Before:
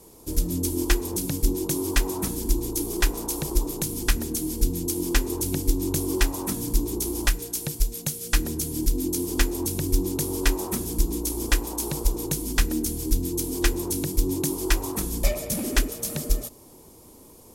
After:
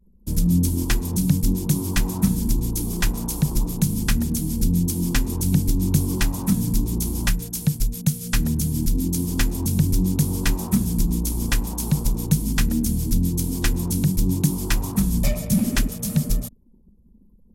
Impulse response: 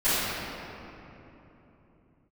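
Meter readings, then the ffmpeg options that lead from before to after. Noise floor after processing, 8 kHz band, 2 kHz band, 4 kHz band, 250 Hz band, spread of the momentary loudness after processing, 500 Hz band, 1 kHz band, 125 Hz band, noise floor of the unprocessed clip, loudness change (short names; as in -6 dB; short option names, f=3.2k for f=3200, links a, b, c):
-53 dBFS, 0.0 dB, 0.0 dB, 0.0 dB, +6.0 dB, 3 LU, -5.0 dB, -1.0 dB, +9.5 dB, -49 dBFS, +3.5 dB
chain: -filter_complex "[0:a]anlmdn=0.398,lowshelf=f=260:t=q:w=3:g=9,acrossover=split=130|1700[a][b][c];[a]asoftclip=type=tanh:threshold=-16dB[d];[d][b][c]amix=inputs=3:normalize=0"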